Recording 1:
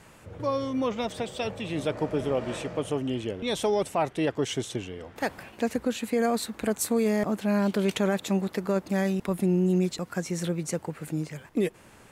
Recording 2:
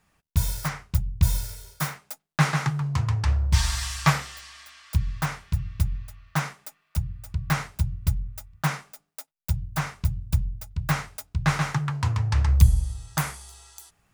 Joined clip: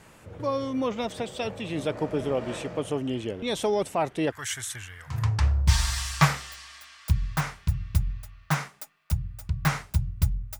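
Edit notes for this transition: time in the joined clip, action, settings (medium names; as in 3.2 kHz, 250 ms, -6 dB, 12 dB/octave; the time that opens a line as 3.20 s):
recording 1
4.32–5.24 s: FFT filter 100 Hz 0 dB, 190 Hz -19 dB, 390 Hz -23 dB, 630 Hz -14 dB, 900 Hz -4 dB, 1.7 kHz +11 dB, 2.8 kHz -2 dB, 5.4 kHz +2 dB, 11 kHz +13 dB
5.15 s: go over to recording 2 from 3.00 s, crossfade 0.18 s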